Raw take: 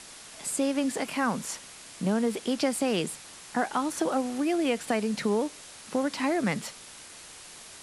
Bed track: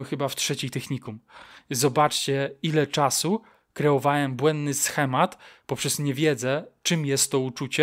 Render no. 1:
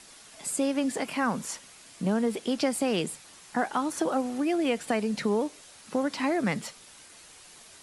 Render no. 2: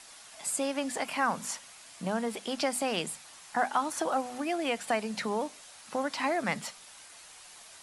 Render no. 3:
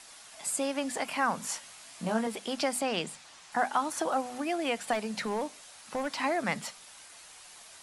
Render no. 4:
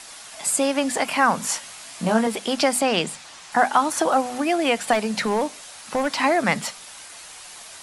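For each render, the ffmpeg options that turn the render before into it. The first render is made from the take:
ffmpeg -i in.wav -af "afftdn=noise_reduction=6:noise_floor=-47" out.wav
ffmpeg -i in.wav -af "lowshelf=frequency=540:width_type=q:width=1.5:gain=-6,bandreject=frequency=50:width_type=h:width=6,bandreject=frequency=100:width_type=h:width=6,bandreject=frequency=150:width_type=h:width=6,bandreject=frequency=200:width_type=h:width=6,bandreject=frequency=250:width_type=h:width=6" out.wav
ffmpeg -i in.wav -filter_complex "[0:a]asettb=1/sr,asplit=3[link_01][link_02][link_03];[link_01]atrim=end=1.454[link_04];[link_02]atrim=start=1.45:end=2.27,asetpts=PTS-STARTPTS,afade=type=in:duration=0.004:curve=qsin,afade=type=out:start_time=0.816:duration=0.004:curve=qsin,asplit=2[link_05][link_06];[link_06]adelay=18,volume=-4dB[link_07];[link_05][link_07]amix=inputs=2:normalize=0,atrim=end_sample=36162[link_08];[link_03]atrim=start=2.266[link_09];[link_04][link_08]acrossfade=duration=0.004:curve1=hsin:curve2=qsin[link_10];[link_10][link_09]acrossfade=duration=0.004:curve1=qsin:curve2=hsin,asettb=1/sr,asplit=3[link_11][link_12][link_13];[link_11]atrim=end=2.814[link_14];[link_12]atrim=start=2.81:end=3.52,asetpts=PTS-STARTPTS,afade=type=in:duration=0.004:curve=qsin,afade=type=out:start_time=0.706:duration=0.004:curve=qsin,lowpass=7200[link_15];[link_13]atrim=start=3.516[link_16];[link_14][link_15]acrossfade=duration=0.004:curve1=hsin:curve2=qsin[link_17];[link_17][link_16]acrossfade=duration=0.004:curve1=qsin:curve2=hsin,asettb=1/sr,asplit=3[link_18][link_19][link_20];[link_18]atrim=end=4.934[link_21];[link_19]atrim=start=4.93:end=6.15,asetpts=PTS-STARTPTS,afade=type=in:duration=0.004:curve=qsin,afade=type=out:start_time=1.216:duration=0.004:curve=qsin,volume=25.5dB,asoftclip=hard,volume=-25.5dB[link_22];[link_20]atrim=start=6.146[link_23];[link_21][link_22]acrossfade=duration=0.004:curve1=hsin:curve2=qsin[link_24];[link_24][link_23]acrossfade=duration=0.004:curve1=qsin:curve2=hsin" out.wav
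ffmpeg -i in.wav -af "volume=10dB" out.wav

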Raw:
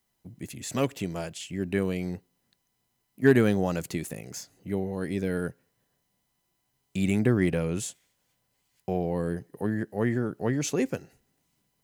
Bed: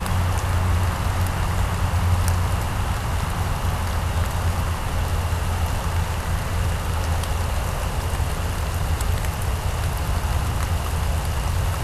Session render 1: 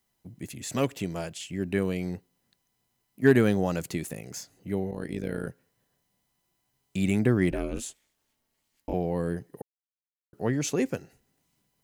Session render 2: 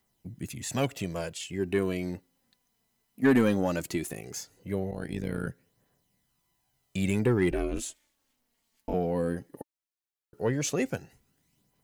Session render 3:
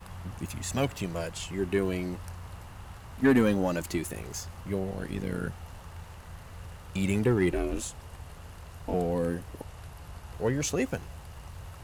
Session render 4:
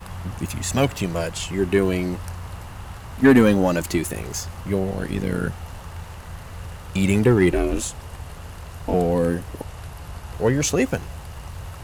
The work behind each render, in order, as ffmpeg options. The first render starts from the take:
ffmpeg -i in.wav -filter_complex "[0:a]asettb=1/sr,asplit=3[link_01][link_02][link_03];[link_01]atrim=end=4.914[link_04];[link_02]atrim=start=4.91:end=5.47,asetpts=PTS-STARTPTS,afade=type=in:duration=0.004:curve=qsin,afade=type=out:start_time=0.556:duration=0.004:curve=qsin,tremolo=f=55:d=0.857[link_05];[link_03]atrim=start=5.466[link_06];[link_04][link_05]acrossfade=duration=0.004:curve1=hsin:curve2=qsin[link_07];[link_07][link_06]acrossfade=duration=0.004:curve1=qsin:curve2=hsin,asettb=1/sr,asplit=3[link_08][link_09][link_10];[link_08]atrim=end=7.514[link_11];[link_09]atrim=start=7.51:end=8.94,asetpts=PTS-STARTPTS,afade=type=in:duration=0.004:curve=qsin,afade=type=out:start_time=1.426:duration=0.004:curve=qsin,aeval=exprs='val(0)*sin(2*PI*120*n/s)':channel_layout=same[link_12];[link_10]atrim=start=8.936[link_13];[link_11][link_12]acrossfade=duration=0.004:curve1=hsin:curve2=qsin[link_14];[link_14][link_13]acrossfade=duration=0.004:curve1=qsin:curve2=hsin,asplit=3[link_15][link_16][link_17];[link_15]atrim=end=9.62,asetpts=PTS-STARTPTS,afade=type=out:start_time=9.616:duration=0.004:curve=hsin[link_18];[link_16]atrim=start=9.62:end=10.33,asetpts=PTS-STARTPTS,volume=0[link_19];[link_17]atrim=start=10.33,asetpts=PTS-STARTPTS,afade=type=in:duration=0.004:curve=hsin[link_20];[link_18][link_19][link_20]concat=n=3:v=0:a=1" out.wav
ffmpeg -i in.wav -af "aphaser=in_gain=1:out_gain=1:delay=4.6:decay=0.41:speed=0.17:type=triangular,asoftclip=type=tanh:threshold=-14dB" out.wav
ffmpeg -i in.wav -i bed.wav -filter_complex "[1:a]volume=-21dB[link_01];[0:a][link_01]amix=inputs=2:normalize=0" out.wav
ffmpeg -i in.wav -af "volume=8.5dB" out.wav

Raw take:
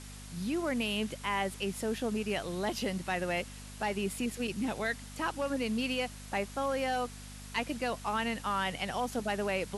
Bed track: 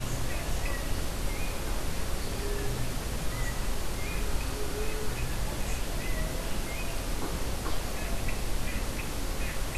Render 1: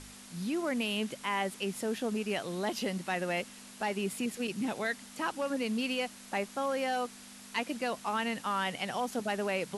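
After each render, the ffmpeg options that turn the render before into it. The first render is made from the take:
ffmpeg -i in.wav -af "bandreject=frequency=50:width_type=h:width=4,bandreject=frequency=100:width_type=h:width=4,bandreject=frequency=150:width_type=h:width=4" out.wav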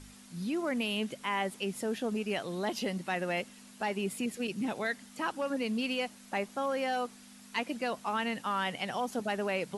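ffmpeg -i in.wav -af "afftdn=noise_reduction=6:noise_floor=-51" out.wav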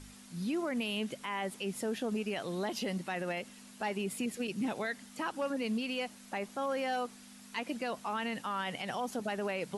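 ffmpeg -i in.wav -af "alimiter=level_in=2.5dB:limit=-24dB:level=0:latency=1:release=57,volume=-2.5dB" out.wav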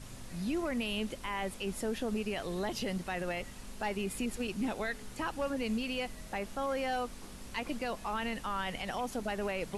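ffmpeg -i in.wav -i bed.wav -filter_complex "[1:a]volume=-17dB[link_01];[0:a][link_01]amix=inputs=2:normalize=0" out.wav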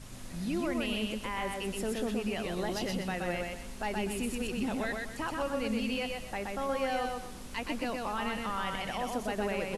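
ffmpeg -i in.wav -af "aecho=1:1:124|248|372|496:0.708|0.227|0.0725|0.0232" out.wav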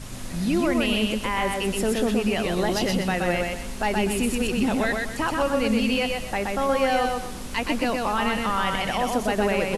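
ffmpeg -i in.wav -af "volume=10dB" out.wav

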